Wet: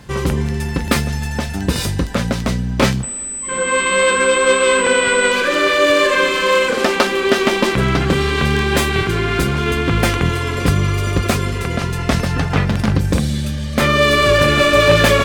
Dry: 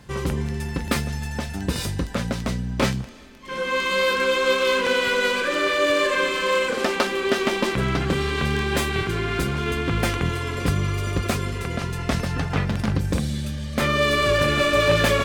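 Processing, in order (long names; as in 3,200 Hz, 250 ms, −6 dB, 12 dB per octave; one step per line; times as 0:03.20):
0:03.03–0:05.32: switching amplifier with a slow clock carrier 8,000 Hz
level +7 dB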